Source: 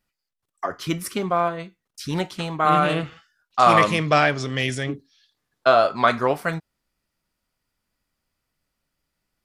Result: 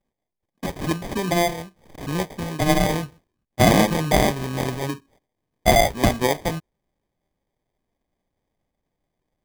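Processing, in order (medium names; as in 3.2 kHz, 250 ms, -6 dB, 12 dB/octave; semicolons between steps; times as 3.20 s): 2.96–3.60 s: median filter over 41 samples; 5.18–5.55 s: time-frequency box 1.5–7.8 kHz -17 dB; sample-and-hold 32×; 0.76–2.15 s: swell ahead of each attack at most 110 dB/s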